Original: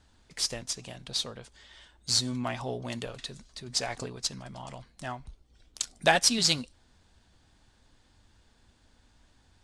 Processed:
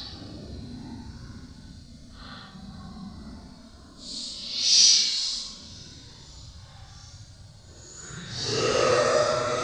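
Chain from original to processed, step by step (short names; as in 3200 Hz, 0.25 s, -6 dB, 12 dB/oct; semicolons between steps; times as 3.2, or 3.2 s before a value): echoes that change speed 0.173 s, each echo -5 st, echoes 3; Paulstretch 11×, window 0.05 s, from 7.49; resonant high shelf 3400 Hz +9 dB, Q 3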